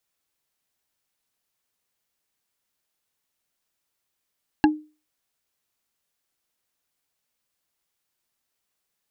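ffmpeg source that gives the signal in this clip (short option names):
-f lavfi -i "aevalsrc='0.299*pow(10,-3*t/0.32)*sin(2*PI*305*t)+0.2*pow(10,-3*t/0.095)*sin(2*PI*840.9*t)+0.133*pow(10,-3*t/0.042)*sin(2*PI*1648.2*t)+0.0891*pow(10,-3*t/0.023)*sin(2*PI*2724.6*t)+0.0596*pow(10,-3*t/0.014)*sin(2*PI*4068.7*t)':d=0.45:s=44100"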